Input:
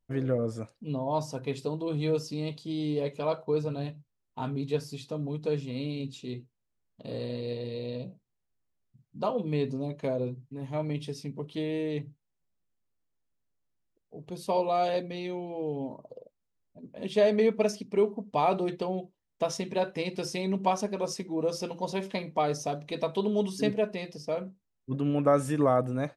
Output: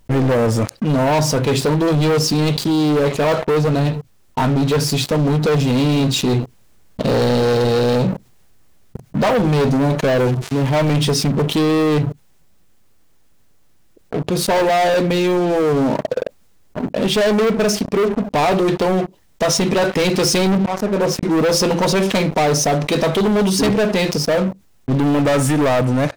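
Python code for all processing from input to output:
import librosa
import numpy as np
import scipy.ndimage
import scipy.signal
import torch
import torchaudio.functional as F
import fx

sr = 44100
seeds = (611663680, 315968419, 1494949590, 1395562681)

y = fx.chain(x, sr, fx.crossing_spikes(level_db=-34.0),
    fx.lowpass(hz=2900.0, slope=12),
    fx.peak_eq(hz=200.0, db=-4.5, octaves=1.4), at=(10.04, 10.94))
y = fx.chain(y, sr, fx.lowpass(hz=1400.0, slope=6),
    fx.auto_swell(attack_ms=621.0), at=(20.55, 21.23))
y = fx.rider(y, sr, range_db=10, speed_s=2.0)
y = fx.leveller(y, sr, passes=5)
y = fx.env_flatten(y, sr, amount_pct=50)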